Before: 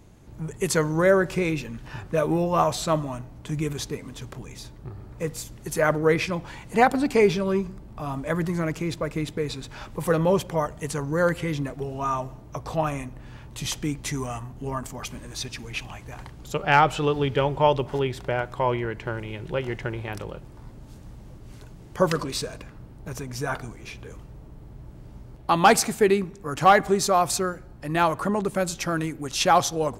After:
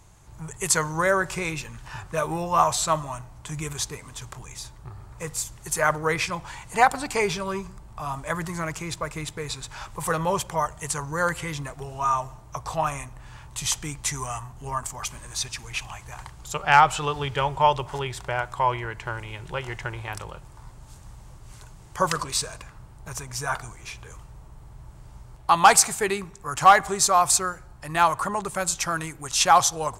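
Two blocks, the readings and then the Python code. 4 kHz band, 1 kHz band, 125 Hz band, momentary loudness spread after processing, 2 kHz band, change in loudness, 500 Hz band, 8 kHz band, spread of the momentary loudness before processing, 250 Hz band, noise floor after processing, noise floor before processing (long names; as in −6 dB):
+2.5 dB, +2.5 dB, −4.0 dB, 20 LU, +2.0 dB, +0.5 dB, −5.0 dB, +7.5 dB, 18 LU, −8.0 dB, −47 dBFS, −45 dBFS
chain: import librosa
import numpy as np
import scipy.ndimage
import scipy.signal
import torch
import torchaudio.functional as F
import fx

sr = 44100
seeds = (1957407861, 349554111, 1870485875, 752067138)

y = fx.graphic_eq(x, sr, hz=(250, 500, 1000, 8000), db=(-12, -5, 6, 9))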